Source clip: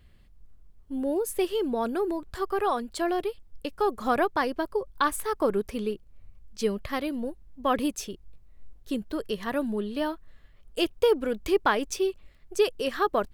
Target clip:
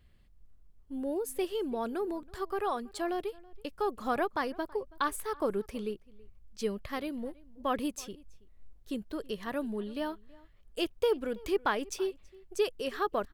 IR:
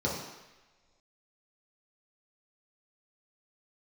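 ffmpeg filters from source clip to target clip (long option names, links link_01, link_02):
-filter_complex "[0:a]asplit=2[link_01][link_02];[link_02]adelay=326.5,volume=-23dB,highshelf=frequency=4000:gain=-7.35[link_03];[link_01][link_03]amix=inputs=2:normalize=0,volume=-6dB"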